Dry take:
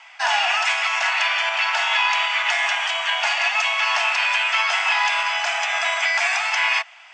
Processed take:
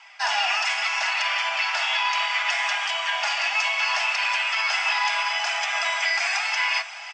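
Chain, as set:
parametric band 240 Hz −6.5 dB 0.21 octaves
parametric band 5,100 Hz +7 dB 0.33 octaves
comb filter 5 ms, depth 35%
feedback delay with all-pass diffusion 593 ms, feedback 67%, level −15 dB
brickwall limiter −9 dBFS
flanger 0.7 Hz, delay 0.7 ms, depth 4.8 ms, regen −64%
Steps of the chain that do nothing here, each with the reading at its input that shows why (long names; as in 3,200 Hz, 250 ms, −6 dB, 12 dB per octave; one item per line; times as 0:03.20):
parametric band 240 Hz: nothing at its input below 540 Hz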